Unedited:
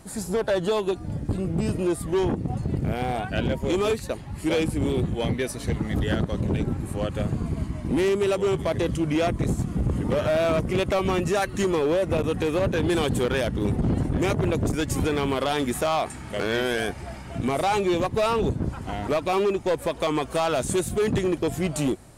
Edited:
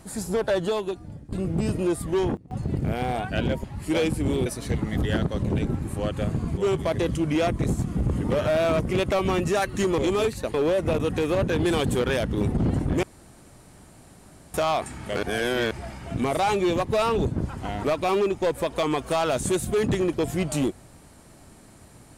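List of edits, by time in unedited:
0.55–1.32 s: fade out, to -17.5 dB
1.96–2.92 s: dip -21 dB, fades 0.41 s logarithmic
3.64–4.20 s: move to 11.78 s
5.02–5.44 s: delete
7.55–8.37 s: delete
14.27–15.78 s: room tone
16.47–16.95 s: reverse

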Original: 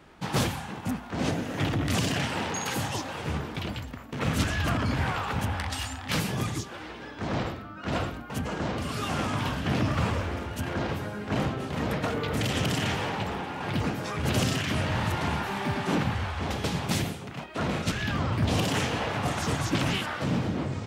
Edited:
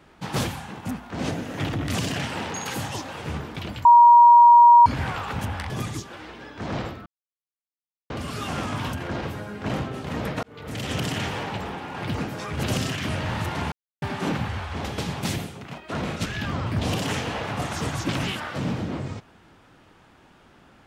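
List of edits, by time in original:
3.85–4.86 s: bleep 951 Hz -8 dBFS
5.70–6.31 s: delete
7.67–8.71 s: mute
9.54–10.59 s: delete
12.09–12.63 s: fade in
15.38–15.68 s: mute

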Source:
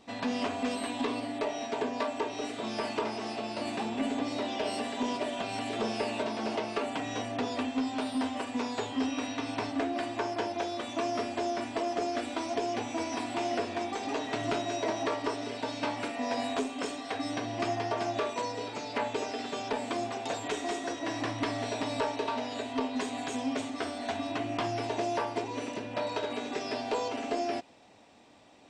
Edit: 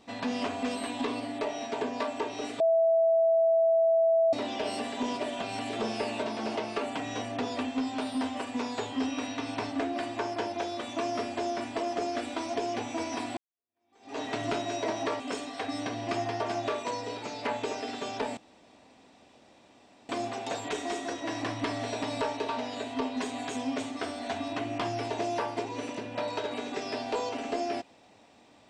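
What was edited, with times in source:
2.60–4.33 s: bleep 658 Hz -20 dBFS
13.37–14.19 s: fade in exponential
15.20–16.71 s: delete
19.88 s: insert room tone 1.72 s

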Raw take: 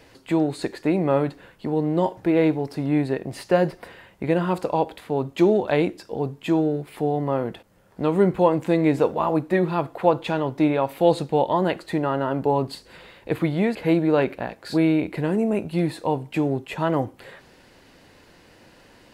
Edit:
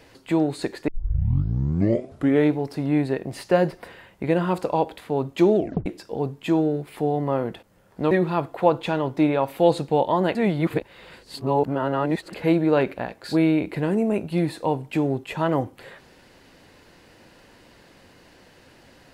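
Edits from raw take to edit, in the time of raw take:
0.88 s: tape start 1.67 s
5.56 s: tape stop 0.30 s
8.11–9.52 s: delete
11.76–13.74 s: reverse

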